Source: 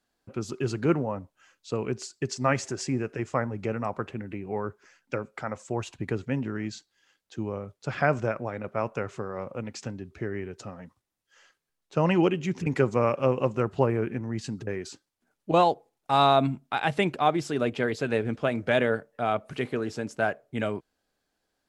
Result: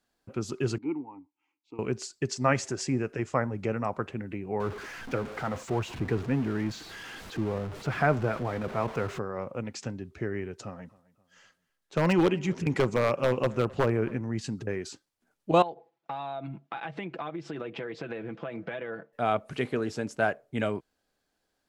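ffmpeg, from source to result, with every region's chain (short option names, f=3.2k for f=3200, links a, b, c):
-filter_complex "[0:a]asettb=1/sr,asplit=3[a][b][c];[a]atrim=end=0.784[d];[b]atrim=start=0.78:end=1.79,asetpts=PTS-STARTPTS,afade=t=in:d=0.004:c=qsin,afade=t=out:st=1.006:d=0.004:c=qsin,asplit=3[e][f][g];[e]bandpass=f=300:t=q:w=8,volume=0dB[h];[f]bandpass=f=870:t=q:w=8,volume=-6dB[i];[g]bandpass=f=2.24k:t=q:w=8,volume=-9dB[j];[h][i][j]amix=inputs=3:normalize=0,equalizer=f=210:t=o:w=0.27:g=-7.5[k];[c]atrim=start=1.786[l];[d][k]acrossfade=d=0.004:c1=hsin:c2=qsin[m];[m][l]acrossfade=d=0.004:c1=qsin:c2=hsin,asettb=1/sr,asplit=3[n][o][p];[n]atrim=end=4.604[q];[o]atrim=start=4.6:end=9.19,asetpts=PTS-STARTPTS,afade=t=in:d=0.004:c=qsin,afade=t=out:st=4.586:d=0.004:c=qsin,aeval=exprs='val(0)+0.5*0.0224*sgn(val(0))':c=same,aemphasis=mode=reproduction:type=75kf,bandreject=f=560:w=9.7[r];[p]atrim=start=9.186[s];[q][r]acrossfade=d=0.004:c1=hsin:c2=qsin[t];[t][s]acrossfade=d=0.004:c1=qsin:c2=hsin,asettb=1/sr,asplit=3[u][v][w];[u]atrim=end=10.624[x];[v]atrim=start=10.62:end=14.19,asetpts=PTS-STARTPTS,afade=t=in:d=0.004:c=qsin,afade=t=out:st=3.566:d=0.004:c=qsin,aeval=exprs='0.168*(abs(mod(val(0)/0.168+3,4)-2)-1)':c=same,asplit=2[y][z];[z]adelay=263,lowpass=f=4k:p=1,volume=-22dB,asplit=2[aa][ab];[ab]adelay=263,lowpass=f=4k:p=1,volume=0.42,asplit=2[ac][ad];[ad]adelay=263,lowpass=f=4k:p=1,volume=0.42[ae];[y][aa][ac][ae]amix=inputs=4:normalize=0,atrim=end_sample=157437[af];[w]atrim=start=14.186[ag];[x][af]acrossfade=d=0.004:c1=hsin:c2=qsin[ah];[ah][ag]acrossfade=d=0.004:c1=qsin:c2=hsin,asettb=1/sr,asplit=3[ai][aj][ak];[ai]atrim=end=15.624[al];[aj]atrim=start=15.62:end=19.13,asetpts=PTS-STARTPTS,afade=t=in:d=0.004:c=qsin,afade=t=out:st=3.506:d=0.004:c=qsin,aecho=1:1:6:0.61,atrim=end_sample=154791,acompressor=threshold=-31dB:ratio=16:attack=3.2:release=140:knee=1:detection=peak,highpass=140,lowpass=3.1k[am];[ak]atrim=start=19.126[an];[al][am]acrossfade=d=0.004:c1=hsin:c2=qsin[ao];[ao][an]acrossfade=d=0.004:c1=qsin:c2=hsin"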